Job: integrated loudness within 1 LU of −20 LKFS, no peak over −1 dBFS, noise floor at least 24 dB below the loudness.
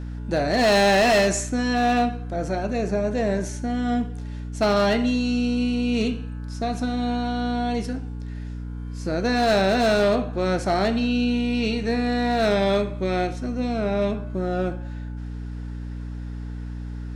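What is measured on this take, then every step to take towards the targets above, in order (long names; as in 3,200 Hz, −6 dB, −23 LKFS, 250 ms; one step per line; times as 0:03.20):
share of clipped samples 1.3%; peaks flattened at −14.5 dBFS; mains hum 60 Hz; hum harmonics up to 300 Hz; level of the hum −30 dBFS; integrated loudness −23.0 LKFS; sample peak −14.5 dBFS; target loudness −20.0 LKFS
→ clipped peaks rebuilt −14.5 dBFS
hum removal 60 Hz, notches 5
level +3 dB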